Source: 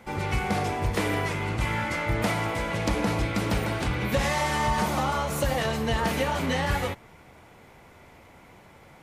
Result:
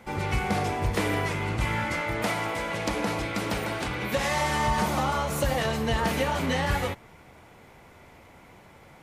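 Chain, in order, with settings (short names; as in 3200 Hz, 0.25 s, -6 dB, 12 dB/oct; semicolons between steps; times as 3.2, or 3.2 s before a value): 2.01–4.32 low shelf 170 Hz -10 dB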